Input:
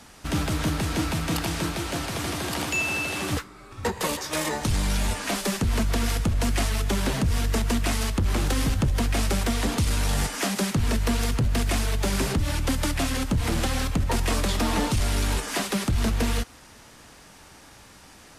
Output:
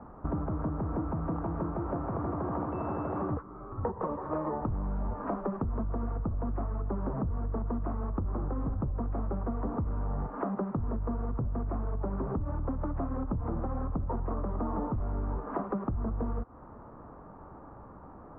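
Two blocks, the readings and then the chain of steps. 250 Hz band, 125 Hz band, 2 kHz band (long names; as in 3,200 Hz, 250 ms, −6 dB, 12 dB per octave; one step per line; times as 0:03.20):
−6.5 dB, −7.5 dB, −23.0 dB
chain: Chebyshev low-pass filter 1,200 Hz, order 4
downward compressor 10 to 1, threshold −33 dBFS, peak gain reduction 13 dB
level +4 dB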